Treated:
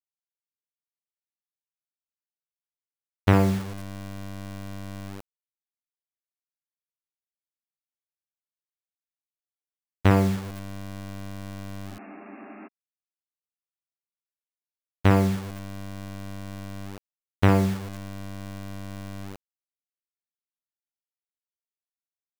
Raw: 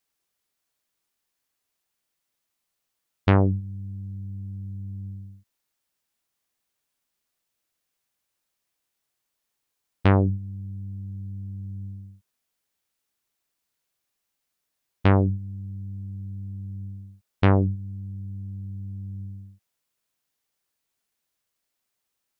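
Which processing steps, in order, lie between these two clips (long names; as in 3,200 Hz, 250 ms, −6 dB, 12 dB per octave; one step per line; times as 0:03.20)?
flutter between parallel walls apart 9.8 metres, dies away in 0.45 s
bit-depth reduction 6 bits, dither none
healed spectral selection 0:11.93–0:12.65, 200–2,800 Hz before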